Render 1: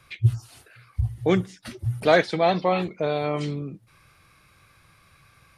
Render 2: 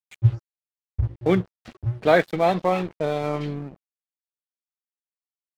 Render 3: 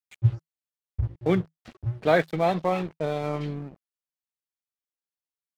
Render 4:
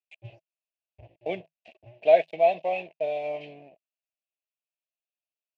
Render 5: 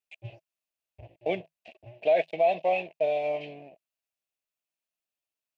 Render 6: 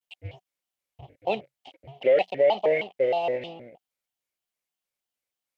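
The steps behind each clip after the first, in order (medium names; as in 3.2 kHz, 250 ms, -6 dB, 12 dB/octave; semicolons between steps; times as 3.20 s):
distance through air 220 m; crossover distortion -39 dBFS; trim +2 dB
dynamic bell 160 Hz, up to +6 dB, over -44 dBFS, Q 8; trim -3.5 dB
two resonant band-passes 1.3 kHz, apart 2 oct; trim +7 dB
peak limiter -17.5 dBFS, peak gain reduction 10.5 dB; trim +2.5 dB
vibrato with a chosen wave square 3.2 Hz, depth 250 cents; trim +2.5 dB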